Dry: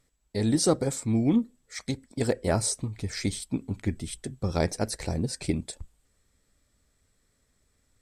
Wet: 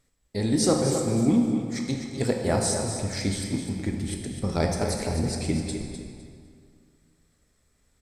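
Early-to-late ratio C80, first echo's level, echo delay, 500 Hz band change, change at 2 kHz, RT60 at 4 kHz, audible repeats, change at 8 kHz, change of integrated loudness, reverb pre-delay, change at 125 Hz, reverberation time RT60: 3.0 dB, -9.0 dB, 253 ms, +3.0 dB, +2.5 dB, 1.6 s, 2, +2.0 dB, +2.5 dB, 18 ms, +2.0 dB, 2.2 s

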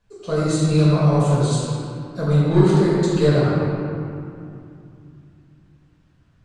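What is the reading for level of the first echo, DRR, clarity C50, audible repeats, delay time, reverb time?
no echo, -9.0 dB, -3.5 dB, no echo, no echo, 2.7 s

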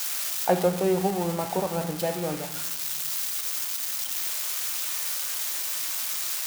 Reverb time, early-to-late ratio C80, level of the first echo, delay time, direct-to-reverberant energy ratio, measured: 1.0 s, 14.5 dB, no echo, no echo, 8.0 dB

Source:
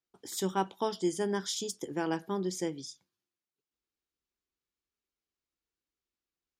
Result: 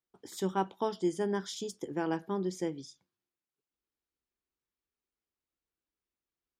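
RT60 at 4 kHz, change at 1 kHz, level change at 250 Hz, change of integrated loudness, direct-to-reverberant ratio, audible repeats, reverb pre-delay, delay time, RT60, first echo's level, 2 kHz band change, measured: no reverb, -0.5 dB, 0.0 dB, -0.5 dB, no reverb, no echo, no reverb, no echo, no reverb, no echo, -2.0 dB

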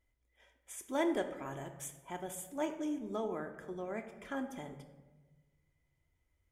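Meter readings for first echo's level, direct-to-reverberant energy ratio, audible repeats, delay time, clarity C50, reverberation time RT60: no echo, 5.0 dB, no echo, no echo, 9.5 dB, 1.2 s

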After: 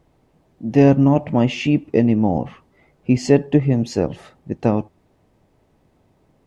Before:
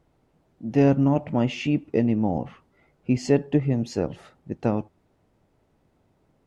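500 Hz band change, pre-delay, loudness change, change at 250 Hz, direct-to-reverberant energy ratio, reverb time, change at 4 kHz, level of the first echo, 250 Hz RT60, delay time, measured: +6.0 dB, no reverb, +6.0 dB, +6.0 dB, no reverb, no reverb, +6.0 dB, no echo, no reverb, no echo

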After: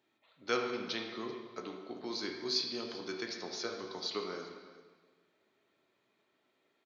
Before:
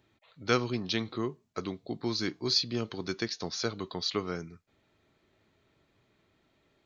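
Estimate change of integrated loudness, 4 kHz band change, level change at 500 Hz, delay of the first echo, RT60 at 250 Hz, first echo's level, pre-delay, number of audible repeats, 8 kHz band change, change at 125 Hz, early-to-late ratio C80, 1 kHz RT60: -5.5 dB, -5.0 dB, -4.0 dB, 388 ms, 1.5 s, -19.0 dB, 6 ms, 1, no reading, -18.0 dB, 5.0 dB, 1.4 s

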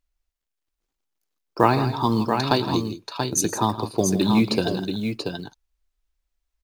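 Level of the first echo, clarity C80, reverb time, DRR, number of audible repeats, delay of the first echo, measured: -18.0 dB, no reverb, no reverb, no reverb, 3, 111 ms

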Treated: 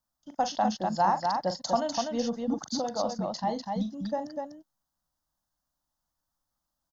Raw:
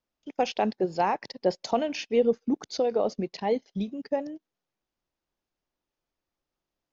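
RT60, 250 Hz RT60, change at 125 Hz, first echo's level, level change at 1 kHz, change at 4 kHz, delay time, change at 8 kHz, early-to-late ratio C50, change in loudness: no reverb, no reverb, +1.0 dB, -10.0 dB, +3.0 dB, +1.5 dB, 42 ms, no reading, no reverb, -1.5 dB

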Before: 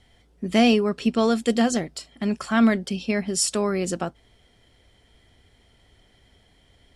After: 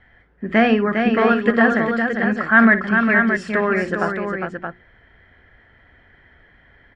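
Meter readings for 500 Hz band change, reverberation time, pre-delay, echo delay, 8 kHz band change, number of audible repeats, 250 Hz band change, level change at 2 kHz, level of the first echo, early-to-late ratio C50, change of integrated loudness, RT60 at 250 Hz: +5.0 dB, no reverb, no reverb, 57 ms, under -20 dB, 3, +3.5 dB, +15.0 dB, -13.5 dB, no reverb, +5.5 dB, no reverb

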